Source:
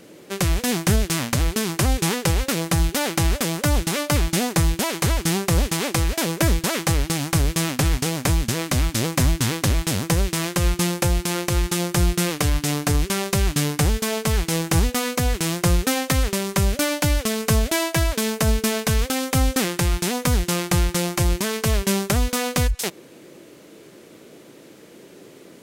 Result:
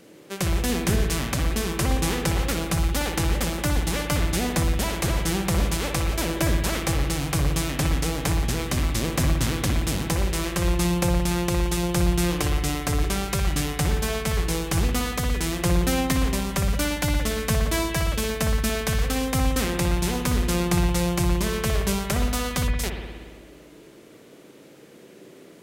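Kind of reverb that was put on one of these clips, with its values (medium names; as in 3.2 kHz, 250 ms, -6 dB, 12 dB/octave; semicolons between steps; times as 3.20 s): spring tank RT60 1.6 s, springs 57 ms, chirp 70 ms, DRR 2.5 dB; trim -4.5 dB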